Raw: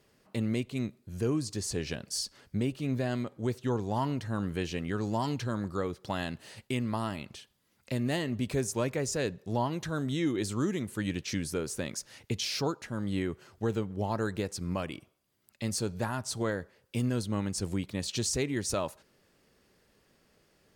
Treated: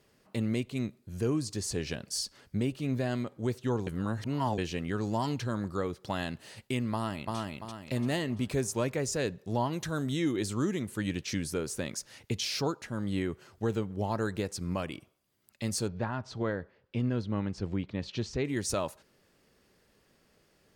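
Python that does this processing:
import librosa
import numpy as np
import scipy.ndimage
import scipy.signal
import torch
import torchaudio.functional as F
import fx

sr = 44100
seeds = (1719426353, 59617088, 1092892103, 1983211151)

y = fx.echo_throw(x, sr, start_s=6.93, length_s=0.44, ms=340, feedback_pct=40, wet_db=-1.5)
y = fx.high_shelf(y, sr, hz=fx.line((9.72, 5300.0), (10.4, 11000.0)), db=6.5, at=(9.72, 10.4), fade=0.02)
y = fx.air_absorb(y, sr, metres=230.0, at=(15.87, 18.44), fade=0.02)
y = fx.edit(y, sr, fx.reverse_span(start_s=3.87, length_s=0.71), tone=tone)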